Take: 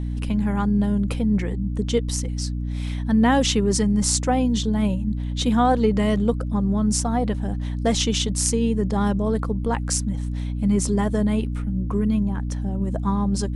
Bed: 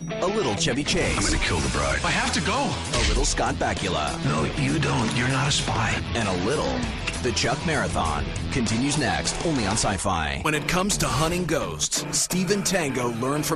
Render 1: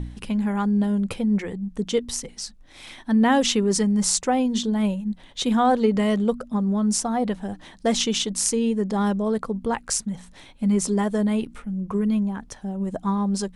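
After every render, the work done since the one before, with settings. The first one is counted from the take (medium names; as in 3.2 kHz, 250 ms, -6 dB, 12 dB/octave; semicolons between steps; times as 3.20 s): de-hum 60 Hz, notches 5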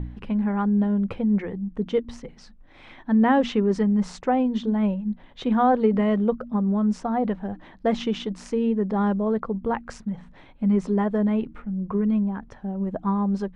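low-pass 1.9 kHz 12 dB/octave; de-hum 78.46 Hz, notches 4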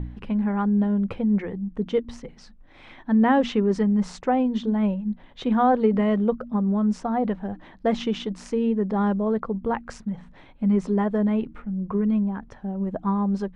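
no audible change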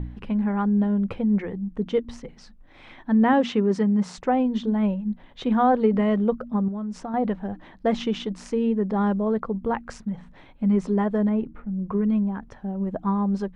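3.33–4.18 s: high-pass 67 Hz 24 dB/octave; 6.68–7.14 s: compression, threshold -28 dBFS; 11.29–11.79 s: low-pass 1.2 kHz 6 dB/octave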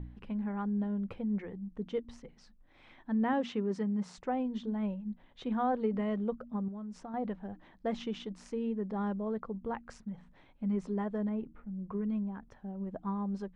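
trim -11.5 dB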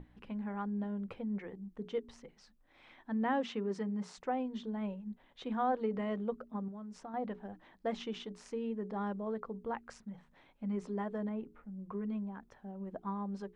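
bass shelf 200 Hz -9 dB; hum notches 60/120/180/240/300/360/420 Hz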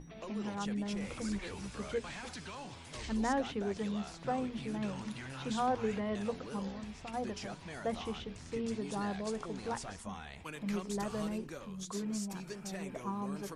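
add bed -22 dB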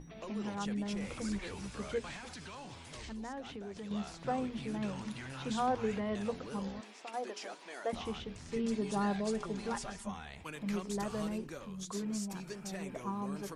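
2.16–3.91 s: compression 3:1, threshold -43 dBFS; 6.81–7.93 s: high-pass 320 Hz 24 dB/octave; 8.48–10.11 s: comb 5 ms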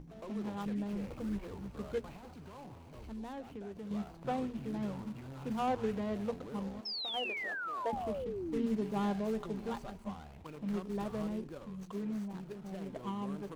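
median filter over 25 samples; 6.85–8.77 s: painted sound fall 200–5400 Hz -39 dBFS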